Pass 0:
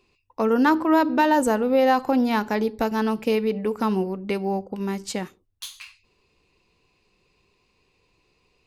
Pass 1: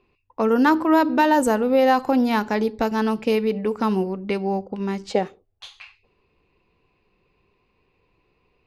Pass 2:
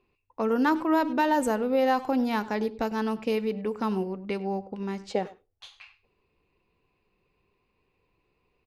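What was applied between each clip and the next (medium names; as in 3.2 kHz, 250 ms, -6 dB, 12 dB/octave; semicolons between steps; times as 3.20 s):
level-controlled noise filter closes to 2.3 kHz, open at -17.5 dBFS; time-frequency box 5.10–6.07 s, 370–870 Hz +10 dB; trim +1.5 dB
speakerphone echo 100 ms, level -17 dB; trim -6.5 dB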